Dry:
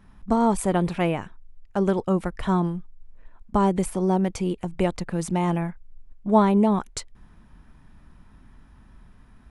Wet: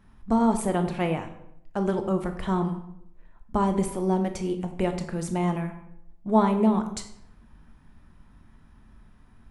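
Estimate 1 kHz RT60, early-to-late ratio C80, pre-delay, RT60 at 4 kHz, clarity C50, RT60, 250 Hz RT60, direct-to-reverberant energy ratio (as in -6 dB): 0.70 s, 12.5 dB, 14 ms, 0.55 s, 9.5 dB, 0.75 s, 0.85 s, 6.5 dB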